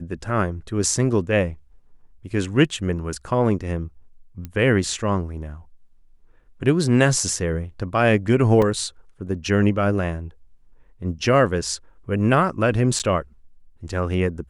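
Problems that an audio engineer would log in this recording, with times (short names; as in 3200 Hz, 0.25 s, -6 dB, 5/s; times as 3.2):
4.45 pop -19 dBFS
8.62 gap 3.5 ms
12.99–13 gap 7.2 ms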